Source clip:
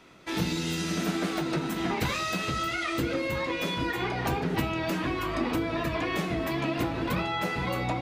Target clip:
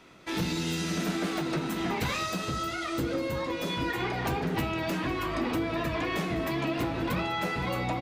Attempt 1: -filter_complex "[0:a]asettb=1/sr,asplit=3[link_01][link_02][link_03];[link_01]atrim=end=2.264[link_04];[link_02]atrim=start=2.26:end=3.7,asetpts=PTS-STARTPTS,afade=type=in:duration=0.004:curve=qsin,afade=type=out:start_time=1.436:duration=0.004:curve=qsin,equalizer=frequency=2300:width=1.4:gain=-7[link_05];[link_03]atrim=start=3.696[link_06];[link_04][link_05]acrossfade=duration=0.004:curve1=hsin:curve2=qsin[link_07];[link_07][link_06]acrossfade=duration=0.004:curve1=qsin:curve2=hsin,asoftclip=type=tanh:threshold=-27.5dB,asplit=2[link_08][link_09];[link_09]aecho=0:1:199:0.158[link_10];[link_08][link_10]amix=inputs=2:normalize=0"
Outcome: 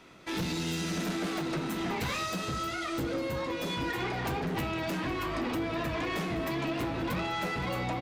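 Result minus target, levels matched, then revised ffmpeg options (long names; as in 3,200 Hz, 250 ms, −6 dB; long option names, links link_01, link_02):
soft clipping: distortion +8 dB
-filter_complex "[0:a]asettb=1/sr,asplit=3[link_01][link_02][link_03];[link_01]atrim=end=2.264[link_04];[link_02]atrim=start=2.26:end=3.7,asetpts=PTS-STARTPTS,afade=type=in:duration=0.004:curve=qsin,afade=type=out:start_time=1.436:duration=0.004:curve=qsin,equalizer=frequency=2300:width=1.4:gain=-7[link_05];[link_03]atrim=start=3.696[link_06];[link_04][link_05]acrossfade=duration=0.004:curve1=hsin:curve2=qsin[link_07];[link_07][link_06]acrossfade=duration=0.004:curve1=qsin:curve2=hsin,asoftclip=type=tanh:threshold=-20.5dB,asplit=2[link_08][link_09];[link_09]aecho=0:1:199:0.158[link_10];[link_08][link_10]amix=inputs=2:normalize=0"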